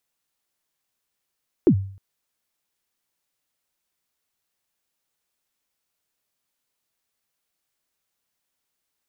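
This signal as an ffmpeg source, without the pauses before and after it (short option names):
-f lavfi -i "aevalsrc='0.376*pow(10,-3*t/0.51)*sin(2*PI*(410*0.078/log(97/410)*(exp(log(97/410)*min(t,0.078)/0.078)-1)+97*max(t-0.078,0)))':d=0.31:s=44100"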